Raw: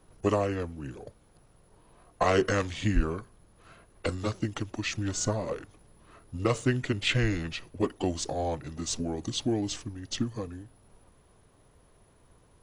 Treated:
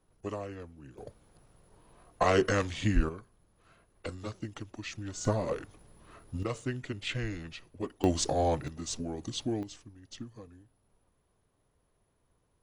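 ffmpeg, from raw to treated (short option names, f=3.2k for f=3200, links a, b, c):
-af "asetnsamples=n=441:p=0,asendcmd='0.98 volume volume -1dB;3.09 volume volume -8.5dB;5.25 volume volume 0.5dB;6.43 volume volume -8.5dB;8.04 volume volume 3dB;8.68 volume volume -4.5dB;9.63 volume volume -13dB',volume=-11.5dB"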